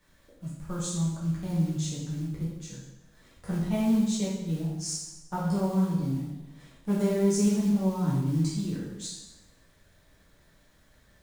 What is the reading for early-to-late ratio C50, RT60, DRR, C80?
1.0 dB, 1.0 s, -8.0 dB, 4.5 dB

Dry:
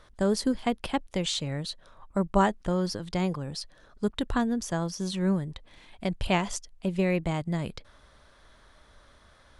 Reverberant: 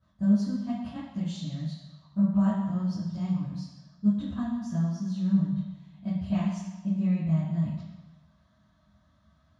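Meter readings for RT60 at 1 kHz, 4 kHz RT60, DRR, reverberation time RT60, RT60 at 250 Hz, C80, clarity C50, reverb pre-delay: 1.2 s, 1.1 s, -14.0 dB, 1.2 s, 0.95 s, 4.0 dB, 0.5 dB, 3 ms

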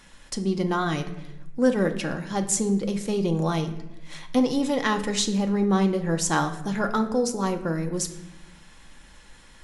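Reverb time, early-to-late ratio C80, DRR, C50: 0.95 s, 14.0 dB, 5.5 dB, 11.5 dB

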